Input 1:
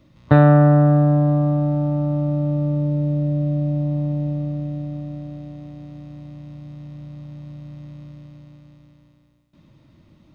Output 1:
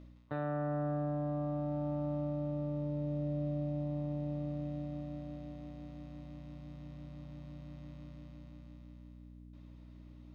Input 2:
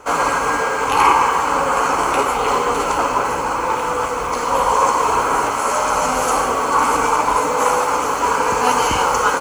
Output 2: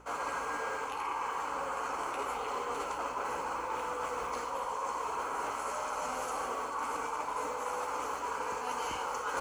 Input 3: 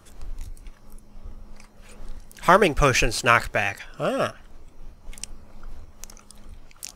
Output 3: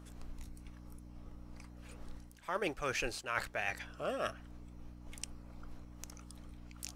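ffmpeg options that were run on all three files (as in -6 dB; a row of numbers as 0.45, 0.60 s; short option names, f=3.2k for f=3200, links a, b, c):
-af "aeval=exprs='val(0)+0.0141*(sin(2*PI*60*n/s)+sin(2*PI*2*60*n/s)/2+sin(2*PI*3*60*n/s)/3+sin(2*PI*4*60*n/s)/4+sin(2*PI*5*60*n/s)/5)':c=same,bass=f=250:g=-8,treble=f=4k:g=-2,areverse,acompressor=threshold=-25dB:ratio=20,areverse,volume=-7dB"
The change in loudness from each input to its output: -20.0, -18.5, -18.5 LU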